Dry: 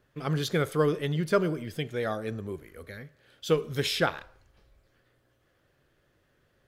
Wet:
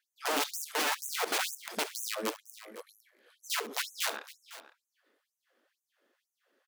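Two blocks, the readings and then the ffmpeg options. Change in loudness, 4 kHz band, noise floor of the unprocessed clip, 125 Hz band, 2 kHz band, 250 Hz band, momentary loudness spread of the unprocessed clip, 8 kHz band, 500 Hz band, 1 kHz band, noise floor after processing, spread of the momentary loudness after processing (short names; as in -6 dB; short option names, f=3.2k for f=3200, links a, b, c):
-4.0 dB, +0.5 dB, -70 dBFS, under -30 dB, 0.0 dB, -13.0 dB, 17 LU, +8.5 dB, -11.5 dB, -1.0 dB, under -85 dBFS, 19 LU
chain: -af "deesser=0.95,lowshelf=f=140:g=11,aeval=exprs='(mod(15.8*val(0)+1,2)-1)/15.8':c=same,aeval=exprs='0.0668*(cos(1*acos(clip(val(0)/0.0668,-1,1)))-cos(1*PI/2))+0.00237*(cos(5*acos(clip(val(0)/0.0668,-1,1)))-cos(5*PI/2))+0.00473*(cos(7*acos(clip(val(0)/0.0668,-1,1)))-cos(7*PI/2))':c=same,aecho=1:1:69|505:0.158|0.15,afftfilt=real='re*gte(b*sr/1024,200*pow(6100/200,0.5+0.5*sin(2*PI*2.1*pts/sr)))':imag='im*gte(b*sr/1024,200*pow(6100/200,0.5+0.5*sin(2*PI*2.1*pts/sr)))':win_size=1024:overlap=0.75"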